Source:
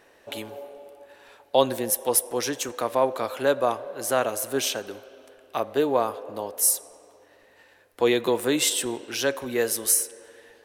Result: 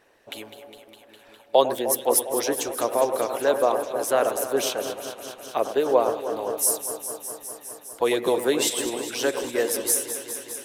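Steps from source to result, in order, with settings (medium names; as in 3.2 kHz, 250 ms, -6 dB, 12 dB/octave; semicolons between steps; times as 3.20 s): echo whose repeats swap between lows and highs 102 ms, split 2.1 kHz, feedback 90%, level -9 dB; dynamic bell 490 Hz, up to +7 dB, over -35 dBFS, Q 0.9; harmonic-percussive split harmonic -10 dB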